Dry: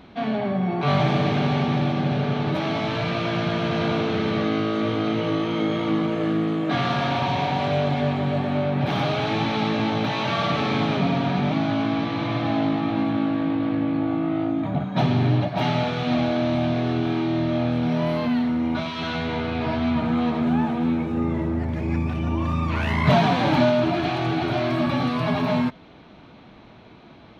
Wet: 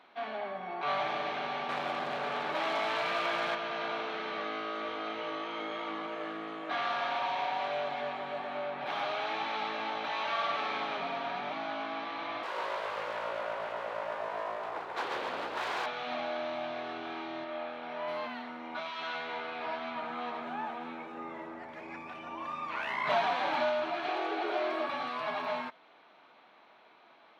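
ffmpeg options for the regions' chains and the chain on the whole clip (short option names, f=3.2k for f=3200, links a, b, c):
-filter_complex "[0:a]asettb=1/sr,asplit=3[a][b][c];[a]atrim=end=1.694[d];[b]atrim=start=1.69:end=3.55,asetpts=PTS-STARTPTS,afade=t=in:d=0.004:c=qsin,afade=t=out:st=1.856:d=0.004:c=qsin,acontrast=36,asoftclip=type=hard:threshold=-16.5dB[e];[c]atrim=start=3.546[f];[d][e]acrossfade=d=0.004:c1=hsin:c2=qsin[g];[g][f]acrossfade=d=0.004:c1=qsin:c2=hsin,asettb=1/sr,asplit=3[h][i][j];[h]atrim=end=12.434[k];[i]atrim=start=12.43:end=15.86,asetpts=PTS-STARTPTS,afade=t=in:d=0.004:c=qsin,afade=t=out:st=3.426:d=0.004:c=qsin,highpass=95,aeval=exprs='abs(val(0))':c=same,asplit=8[l][m][n][o][p][q][r][s];[m]adelay=138,afreqshift=58,volume=-3dB[t];[n]adelay=276,afreqshift=116,volume=-8.8dB[u];[o]adelay=414,afreqshift=174,volume=-14.7dB[v];[p]adelay=552,afreqshift=232,volume=-20.5dB[w];[q]adelay=690,afreqshift=290,volume=-26.4dB[x];[r]adelay=828,afreqshift=348,volume=-32.2dB[y];[s]adelay=966,afreqshift=406,volume=-38.1dB[z];[l][t][u][v][w][x][y][z]amix=inputs=8:normalize=0,atrim=end_sample=151263[aa];[j]atrim=start=15.856[ab];[k][aa]acrossfade=d=0.004:c1=hsin:c2=qsin[ac];[ac][ab]acrossfade=d=0.004:c1=qsin:c2=hsin,asettb=1/sr,asplit=3[ad][ae][af];[ad]atrim=end=17.444[ag];[ae]atrim=start=17.44:end=18.08,asetpts=PTS-STARTPTS,afade=t=in:d=0.004:c=qsin,afade=t=out:st=0.636:d=0.004:c=qsin,acrossover=split=3800[ah][ai];[ai]acompressor=threshold=-58dB:ratio=4:attack=1:release=60[aj];[ah][aj]amix=inputs=2:normalize=0,equalizer=f=78:w=0.7:g=-14[ak];[af]atrim=start=18.076[al];[ag][ak]acrossfade=d=0.004:c1=hsin:c2=qsin[am];[am][al]acrossfade=d=0.004:c1=qsin:c2=hsin,asettb=1/sr,asplit=3[an][ao][ap];[an]atrim=end=24.084[aq];[ao]atrim=start=24.08:end=24.88,asetpts=PTS-STARTPTS,afade=t=in:d=0.004:c=qsin,afade=t=out:st=0.796:d=0.004:c=qsin,highpass=f=270:w=0.5412,highpass=f=270:w=1.3066,equalizer=f=420:t=o:w=0.62:g=14[ar];[ap]atrim=start=24.876[as];[aq][ar]acrossfade=d=0.004:c1=hsin:c2=qsin[at];[at][as]acrossfade=d=0.004:c1=qsin:c2=hsin,highpass=810,highshelf=f=3.3k:g=-11.5,volume=-3.5dB"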